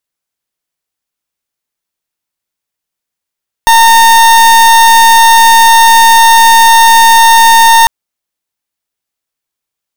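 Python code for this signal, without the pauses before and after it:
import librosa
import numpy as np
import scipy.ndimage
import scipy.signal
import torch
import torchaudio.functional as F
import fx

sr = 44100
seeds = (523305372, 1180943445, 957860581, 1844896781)

y = fx.pulse(sr, length_s=4.2, hz=914.0, level_db=-3.5, duty_pct=37)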